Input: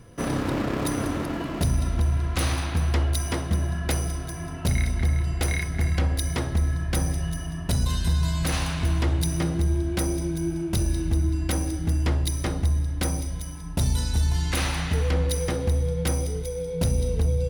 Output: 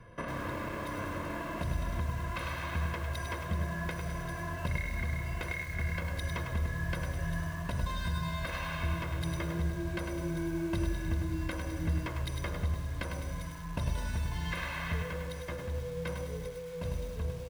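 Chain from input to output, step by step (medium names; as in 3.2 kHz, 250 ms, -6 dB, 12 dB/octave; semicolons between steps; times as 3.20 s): three-band isolator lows -18 dB, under 400 Hz, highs -19 dB, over 2.9 kHz; comb 1.9 ms, depth 81%; compression 16:1, threshold -34 dBFS, peak gain reduction 10.5 dB; resonant low shelf 330 Hz +8 dB, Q 3; feedback delay 90 ms, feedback 59%, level -17 dB; bit-crushed delay 102 ms, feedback 35%, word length 8-bit, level -5 dB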